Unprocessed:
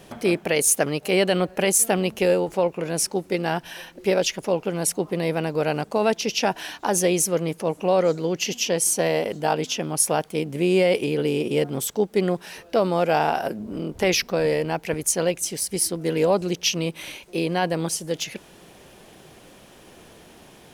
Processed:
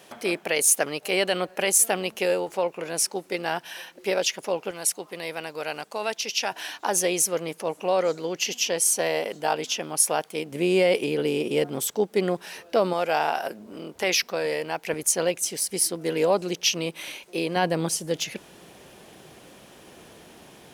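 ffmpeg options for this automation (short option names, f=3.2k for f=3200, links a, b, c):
-af "asetnsamples=n=441:p=0,asendcmd='4.71 highpass f 1500;6.52 highpass f 590;10.52 highpass f 270;12.93 highpass f 750;14.87 highpass f 350;17.56 highpass f 84',highpass=f=640:p=1"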